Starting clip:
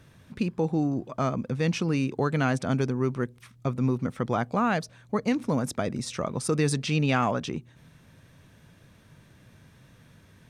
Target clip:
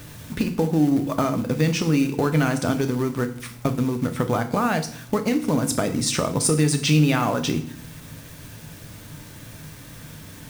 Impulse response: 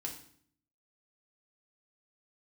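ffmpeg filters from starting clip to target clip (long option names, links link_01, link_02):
-filter_complex "[0:a]acrusher=bits=9:mix=0:aa=0.000001,equalizer=frequency=74:width_type=o:width=0.83:gain=-3,asplit=2[link_01][link_02];[link_02]acrusher=bits=2:mode=log:mix=0:aa=0.000001,volume=-8dB[link_03];[link_01][link_03]amix=inputs=2:normalize=0,acompressor=threshold=-28dB:ratio=6,asplit=2[link_04][link_05];[link_05]highshelf=frequency=5500:gain=10[link_06];[1:a]atrim=start_sample=2205,lowshelf=frequency=71:gain=8[link_07];[link_06][link_07]afir=irnorm=-1:irlink=0,volume=1.5dB[link_08];[link_04][link_08]amix=inputs=2:normalize=0,volume=3.5dB"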